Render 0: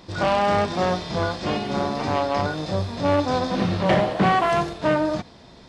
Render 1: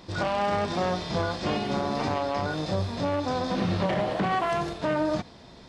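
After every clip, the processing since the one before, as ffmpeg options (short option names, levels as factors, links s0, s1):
-af "alimiter=limit=0.168:level=0:latency=1:release=93,volume=0.841"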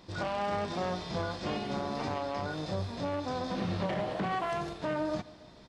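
-af "aecho=1:1:143|286|429|572|715:0.0841|0.0496|0.0293|0.0173|0.0102,volume=0.473"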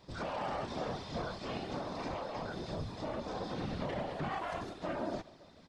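-af "afftfilt=real='hypot(re,im)*cos(2*PI*random(0))':imag='hypot(re,im)*sin(2*PI*random(1))':win_size=512:overlap=0.75,volume=1.12"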